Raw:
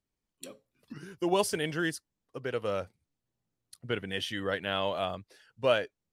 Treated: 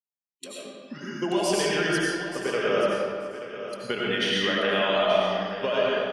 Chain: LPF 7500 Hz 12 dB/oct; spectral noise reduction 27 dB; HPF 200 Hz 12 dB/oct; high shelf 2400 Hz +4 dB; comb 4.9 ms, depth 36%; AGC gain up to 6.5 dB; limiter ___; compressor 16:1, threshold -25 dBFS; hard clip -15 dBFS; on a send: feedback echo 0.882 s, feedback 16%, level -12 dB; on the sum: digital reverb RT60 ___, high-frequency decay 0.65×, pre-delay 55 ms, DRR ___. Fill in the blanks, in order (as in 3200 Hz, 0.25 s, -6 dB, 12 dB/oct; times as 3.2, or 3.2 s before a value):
-13 dBFS, 1.9 s, -5.5 dB